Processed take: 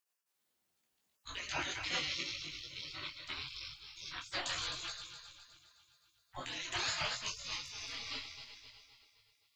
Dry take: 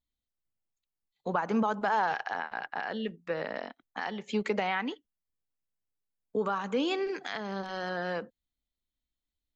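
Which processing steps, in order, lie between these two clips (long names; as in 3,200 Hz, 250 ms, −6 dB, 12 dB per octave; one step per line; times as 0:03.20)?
feedback delay that plays each chunk backwards 130 ms, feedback 71%, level −7 dB
gate on every frequency bin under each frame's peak −30 dB weak
micro pitch shift up and down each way 28 cents
level +16 dB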